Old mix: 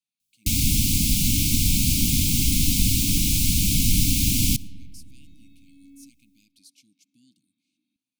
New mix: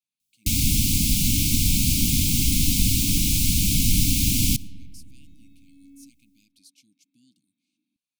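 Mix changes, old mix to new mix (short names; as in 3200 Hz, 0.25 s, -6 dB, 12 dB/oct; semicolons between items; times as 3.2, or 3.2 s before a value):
speech: send off; second sound: add high shelf 3400 Hz -9 dB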